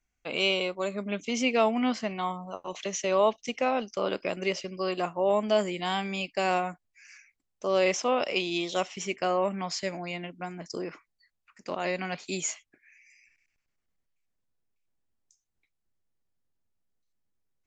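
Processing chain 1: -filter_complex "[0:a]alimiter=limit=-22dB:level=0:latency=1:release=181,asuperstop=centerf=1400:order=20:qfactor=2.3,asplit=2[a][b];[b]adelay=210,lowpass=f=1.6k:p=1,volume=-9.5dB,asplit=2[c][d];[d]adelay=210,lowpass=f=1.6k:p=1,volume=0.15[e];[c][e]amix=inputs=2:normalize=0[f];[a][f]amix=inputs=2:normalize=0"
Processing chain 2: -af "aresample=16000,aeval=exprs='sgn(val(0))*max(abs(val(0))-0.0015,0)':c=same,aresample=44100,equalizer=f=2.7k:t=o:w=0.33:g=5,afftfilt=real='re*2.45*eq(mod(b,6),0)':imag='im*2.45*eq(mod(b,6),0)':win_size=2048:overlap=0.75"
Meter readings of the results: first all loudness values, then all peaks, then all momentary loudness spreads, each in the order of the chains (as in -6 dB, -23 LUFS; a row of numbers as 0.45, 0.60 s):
-34.0, -30.0 LUFS; -20.5, -10.0 dBFS; 8, 17 LU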